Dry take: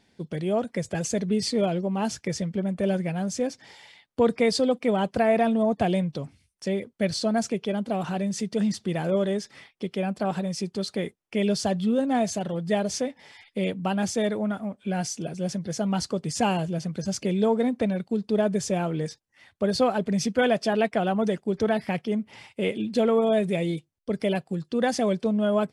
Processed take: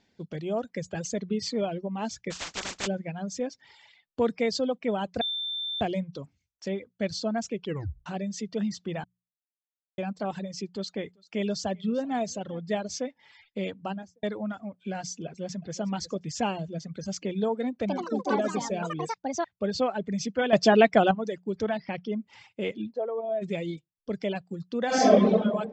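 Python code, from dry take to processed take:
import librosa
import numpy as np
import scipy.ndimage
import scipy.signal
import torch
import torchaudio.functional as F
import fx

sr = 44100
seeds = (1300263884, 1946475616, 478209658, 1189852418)

y = fx.spec_flatten(x, sr, power=0.13, at=(2.3, 2.86), fade=0.02)
y = fx.echo_single(y, sr, ms=388, db=-19.5, at=(10.73, 12.6))
y = fx.studio_fade_out(y, sr, start_s=13.78, length_s=0.45)
y = fx.echo_throw(y, sr, start_s=15.26, length_s=0.54, ms=360, feedback_pct=30, wet_db=-11.0)
y = fx.echo_pitch(y, sr, ms=90, semitones=5, count=3, db_per_echo=-3.0, at=(17.78, 19.88))
y = fx.steep_lowpass(y, sr, hz=5900.0, slope=72, at=(21.77, 22.18), fade=0.02)
y = fx.bandpass_q(y, sr, hz=630.0, q=1.8, at=(22.9, 23.41), fade=0.02)
y = fx.reverb_throw(y, sr, start_s=24.86, length_s=0.46, rt60_s=1.5, drr_db=-11.0)
y = fx.edit(y, sr, fx.bleep(start_s=5.21, length_s=0.6, hz=3560.0, db=-22.5),
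    fx.tape_stop(start_s=7.64, length_s=0.42),
    fx.silence(start_s=9.04, length_s=0.94),
    fx.clip_gain(start_s=20.53, length_s=0.58, db=10.0), tone=tone)
y = scipy.signal.sosfilt(scipy.signal.butter(16, 7600.0, 'lowpass', fs=sr, output='sos'), y)
y = fx.hum_notches(y, sr, base_hz=60, count=3)
y = fx.dereverb_blind(y, sr, rt60_s=0.83)
y = y * 10.0 ** (-4.0 / 20.0)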